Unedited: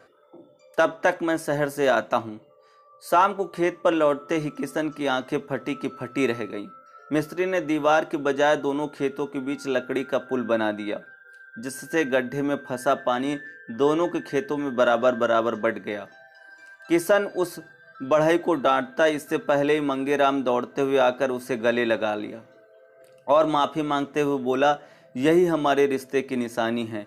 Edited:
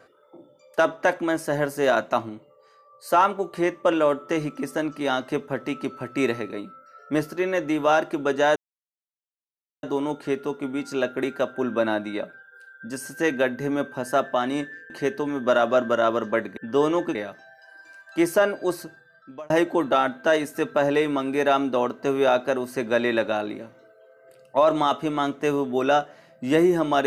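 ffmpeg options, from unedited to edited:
ffmpeg -i in.wav -filter_complex "[0:a]asplit=6[link_01][link_02][link_03][link_04][link_05][link_06];[link_01]atrim=end=8.56,asetpts=PTS-STARTPTS,afade=type=out:start_time=8.556:duration=0.004:curve=hsin,apad=pad_dur=1.27[link_07];[link_02]atrim=start=8.56:end=13.632,asetpts=PTS-STARTPTS,afade=type=in:duration=0.004:curve=hsin[link_08];[link_03]atrim=start=14.208:end=15.882[link_09];[link_04]atrim=start=13.628:end=14.212[link_10];[link_05]atrim=start=15.878:end=18.23,asetpts=PTS-STARTPTS,afade=type=out:start_time=1.672:duration=0.68[link_11];[link_06]atrim=start=18.23,asetpts=PTS-STARTPTS,afade=type=in:duration=0.004:curve=hsin[link_12];[link_07][link_08]concat=n=2:v=0:a=1[link_13];[link_13][link_09]acrossfade=duration=0.004:curve1=hsin:curve2=hsin[link_14];[link_14][link_10]acrossfade=duration=0.004:curve1=hsin:curve2=hsin[link_15];[link_11][link_12]concat=n=2:v=0:a=1[link_16];[link_15][link_16]acrossfade=duration=0.004:curve1=hsin:curve2=hsin" out.wav

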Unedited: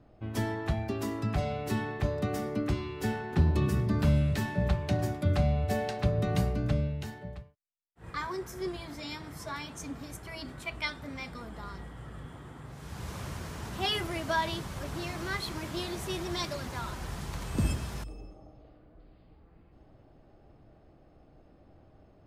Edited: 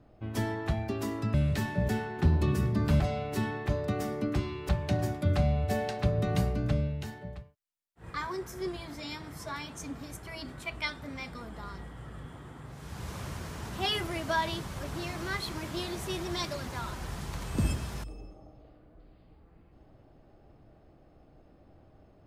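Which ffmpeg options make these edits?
ffmpeg -i in.wav -filter_complex "[0:a]asplit=5[link_01][link_02][link_03][link_04][link_05];[link_01]atrim=end=1.342[link_06];[link_02]atrim=start=4.138:end=4.692[link_07];[link_03]atrim=start=3.028:end=4.142[link_08];[link_04]atrim=start=1.338:end=3.032[link_09];[link_05]atrim=start=4.688[link_10];[link_06][link_07]acrossfade=duration=0.004:curve1=hsin:curve2=hsin[link_11];[link_11][link_08]acrossfade=duration=0.004:curve1=hsin:curve2=hsin[link_12];[link_12][link_09]acrossfade=duration=0.004:curve1=hsin:curve2=hsin[link_13];[link_13][link_10]acrossfade=duration=0.004:curve1=hsin:curve2=hsin" out.wav

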